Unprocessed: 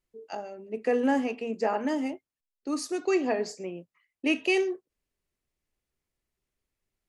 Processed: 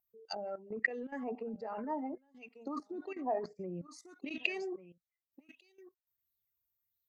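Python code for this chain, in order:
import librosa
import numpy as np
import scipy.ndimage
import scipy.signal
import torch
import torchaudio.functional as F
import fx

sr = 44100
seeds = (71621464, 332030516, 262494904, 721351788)

y = fx.bin_expand(x, sr, power=1.5)
y = scipy.signal.sosfilt(scipy.signal.butter(2, 140.0, 'highpass', fs=sr, output='sos'), y)
y = fx.over_compress(y, sr, threshold_db=-38.0, ratio=-1.0)
y = fx.high_shelf(y, sr, hz=8900.0, db=10.0)
y = y + 10.0 ** (-21.0 / 20.0) * np.pad(y, (int(1144 * sr / 1000.0), 0))[:len(y)]
y = fx.env_lowpass_down(y, sr, base_hz=570.0, full_db=-31.0)
y = fx.level_steps(y, sr, step_db=15)
y = fx.graphic_eq_31(y, sr, hz=(1600, 3150, 6300), db=(-4, -7, 3))
y = fx.bell_lfo(y, sr, hz=1.5, low_hz=770.0, high_hz=4100.0, db=17)
y = F.gain(torch.from_numpy(y), 4.5).numpy()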